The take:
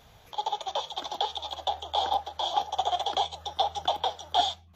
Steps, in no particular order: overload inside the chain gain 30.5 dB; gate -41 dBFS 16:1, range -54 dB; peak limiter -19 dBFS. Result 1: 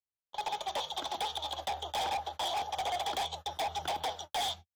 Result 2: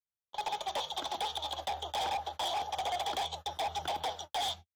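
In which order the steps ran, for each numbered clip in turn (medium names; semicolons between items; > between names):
gate > overload inside the chain > peak limiter; gate > peak limiter > overload inside the chain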